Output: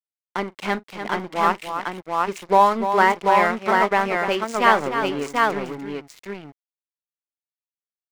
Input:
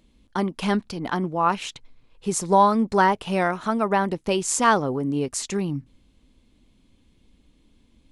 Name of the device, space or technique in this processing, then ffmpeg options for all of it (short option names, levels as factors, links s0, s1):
pocket radio on a weak battery: -filter_complex "[0:a]highpass=290,lowpass=4300,aeval=exprs='sgn(val(0))*max(abs(val(0))-0.0188,0)':c=same,equalizer=f=2100:t=o:w=0.35:g=7.5,asettb=1/sr,asplit=3[s0][s1][s2];[s0]atrim=end=2.884[s3];[s1]atrim=start=2.88:end=3.81,asetpts=PTS-STARTPTS,afade=t=in:d=0.004:c=qsin,afade=t=out:st=0.926:d=0.004:c=qsin,highpass=56[s4];[s2]atrim=start=3.806[s5];[s3][s4]acrossfade=d=0.004:c1=hsin:c2=qsin[s6];[s6][s5]acrossfade=d=0.004:c1=qsin:c2=hsin,aecho=1:1:41|296|737:0.1|0.355|0.708,volume=1.33"